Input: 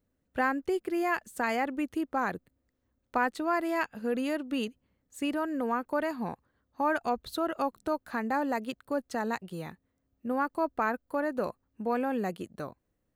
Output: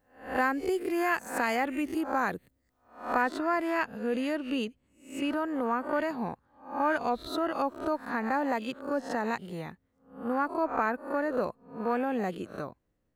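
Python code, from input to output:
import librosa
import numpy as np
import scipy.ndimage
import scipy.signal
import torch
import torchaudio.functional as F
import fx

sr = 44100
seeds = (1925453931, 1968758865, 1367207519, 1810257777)

y = fx.spec_swells(x, sr, rise_s=0.44)
y = fx.high_shelf(y, sr, hz=6100.0, db=fx.steps((0.0, 3.0), (3.21, -8.0)))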